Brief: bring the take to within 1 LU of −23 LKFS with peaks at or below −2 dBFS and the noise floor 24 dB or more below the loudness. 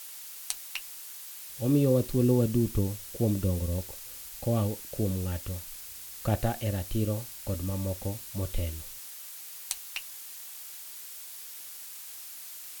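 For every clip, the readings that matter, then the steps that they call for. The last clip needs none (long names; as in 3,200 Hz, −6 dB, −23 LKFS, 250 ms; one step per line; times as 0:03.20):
background noise floor −44 dBFS; target noise floor −56 dBFS; integrated loudness −32.0 LKFS; sample peak −10.0 dBFS; target loudness −23.0 LKFS
→ noise reduction from a noise print 12 dB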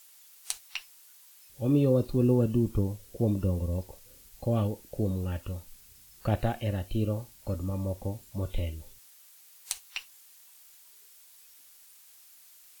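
background noise floor −56 dBFS; integrated loudness −30.5 LKFS; sample peak −10.5 dBFS; target loudness −23.0 LKFS
→ level +7.5 dB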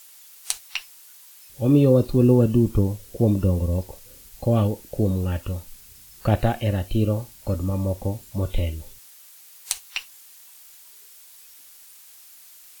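integrated loudness −23.0 LKFS; sample peak −3.0 dBFS; background noise floor −48 dBFS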